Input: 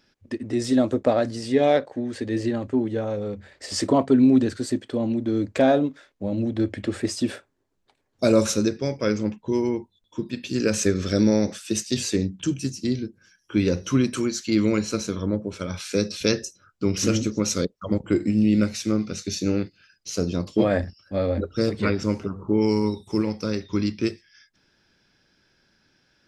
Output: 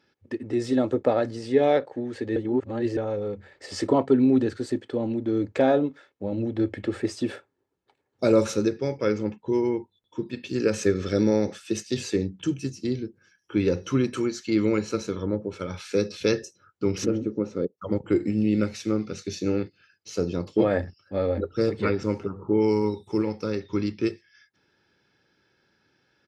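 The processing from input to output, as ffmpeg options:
-filter_complex "[0:a]asplit=3[a][b][c];[a]afade=t=out:st=17.04:d=0.02[d];[b]bandpass=f=300:t=q:w=0.63,afade=t=in:st=17.04:d=0.02,afade=t=out:st=17.77:d=0.02[e];[c]afade=t=in:st=17.77:d=0.02[f];[d][e][f]amix=inputs=3:normalize=0,asplit=3[g][h][i];[g]atrim=end=2.362[j];[h]atrim=start=2.358:end=2.972,asetpts=PTS-STARTPTS,areverse[k];[i]atrim=start=2.968[l];[j][k]acrossfade=d=0.004:c1=hsin:c2=hsin[m];[m][l]acrossfade=d=0.004:c1=hsin:c2=hsin,highpass=100,highshelf=f=4.6k:g=-12,aecho=1:1:2.3:0.34,volume=-1dB"

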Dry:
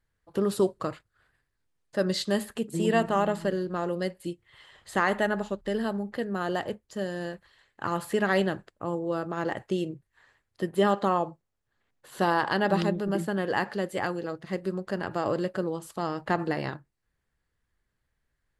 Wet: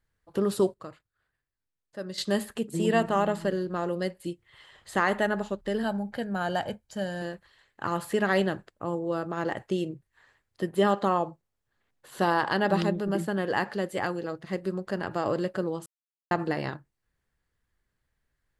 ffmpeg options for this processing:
-filter_complex "[0:a]asettb=1/sr,asplit=3[a][b][c];[a]atrim=end=5.834[d];[b]atrim=start=5.83:end=7.22,asetpts=PTS-STARTPTS,afade=t=in:d=0.004:c=qsin,afade=t=out:st=1.386:d=0.004:c=qsin,aecho=1:1:1.3:0.53,atrim=end_sample=61299[e];[c]atrim=start=7.216[f];[d][e]acrossfade=d=0.004:c1=hsin:c2=qsin[g];[g][f]acrossfade=d=0.004:c1=qsin:c2=hsin,asplit=5[h][i][j][k][l];[h]atrim=end=0.742[m];[i]atrim=start=0.738:end=2.182,asetpts=PTS-STARTPTS,volume=-10.5dB[n];[j]atrim=start=2.178:end=15.86,asetpts=PTS-STARTPTS,afade=t=out:st=13.678:d=0.004:c=hsin[o];[k]atrim=start=15.86:end=16.31,asetpts=PTS-STARTPTS,volume=0[p];[l]atrim=start=16.31,asetpts=PTS-STARTPTS,afade=t=in:d=0.004:c=hsin[q];[m][n]acrossfade=d=0.004:c1=hsin:c2=hsin[r];[o][p][q]concat=n=3:v=0:a=1[s];[r][s]acrossfade=d=0.004:c1=hsin:c2=hsin"

